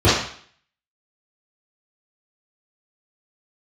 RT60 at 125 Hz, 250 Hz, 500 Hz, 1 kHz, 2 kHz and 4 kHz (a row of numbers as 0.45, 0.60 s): 0.50, 0.50, 0.50, 0.55, 0.55, 0.55 s